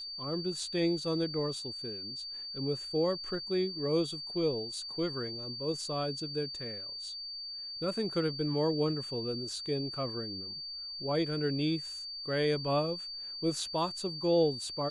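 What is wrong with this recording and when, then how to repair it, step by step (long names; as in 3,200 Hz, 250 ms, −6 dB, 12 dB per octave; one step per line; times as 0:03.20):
whistle 4,600 Hz −39 dBFS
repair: notch filter 4,600 Hz, Q 30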